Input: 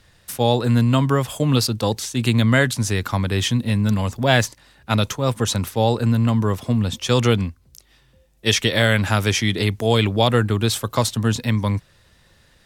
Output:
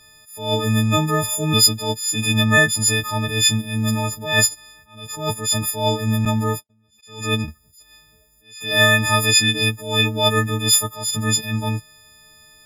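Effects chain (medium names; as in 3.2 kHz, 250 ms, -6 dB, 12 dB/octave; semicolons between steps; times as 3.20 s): partials quantised in pitch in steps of 6 st; 6.25–7.48 s: gate -21 dBFS, range -54 dB; attacks held to a fixed rise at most 110 dB/s; trim -2 dB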